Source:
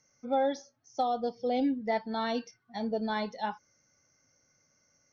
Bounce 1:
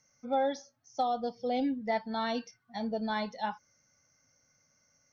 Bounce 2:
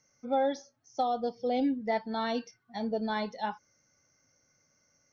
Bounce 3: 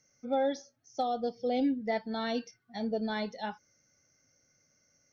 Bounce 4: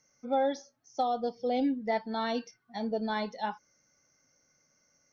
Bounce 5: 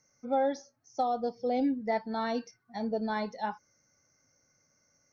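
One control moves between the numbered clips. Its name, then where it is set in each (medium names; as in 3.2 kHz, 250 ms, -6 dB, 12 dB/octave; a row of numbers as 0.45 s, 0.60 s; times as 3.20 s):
peaking EQ, frequency: 370 Hz, 14 kHz, 1 kHz, 100 Hz, 3.2 kHz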